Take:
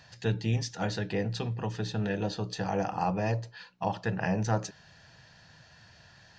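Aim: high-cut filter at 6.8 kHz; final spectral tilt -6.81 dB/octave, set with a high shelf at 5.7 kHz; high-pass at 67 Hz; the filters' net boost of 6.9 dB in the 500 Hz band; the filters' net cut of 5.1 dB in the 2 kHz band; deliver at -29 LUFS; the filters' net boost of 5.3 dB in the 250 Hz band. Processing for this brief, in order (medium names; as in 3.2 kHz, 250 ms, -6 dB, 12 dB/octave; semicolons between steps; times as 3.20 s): high-pass 67 Hz; low-pass 6.8 kHz; peaking EQ 250 Hz +6 dB; peaking EQ 500 Hz +7 dB; peaking EQ 2 kHz -7 dB; treble shelf 5.7 kHz -3.5 dB; trim -1 dB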